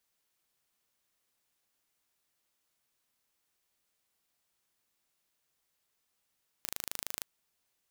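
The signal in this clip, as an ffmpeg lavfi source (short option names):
-f lavfi -i "aevalsrc='0.355*eq(mod(n,1670),0)':d=0.59:s=44100"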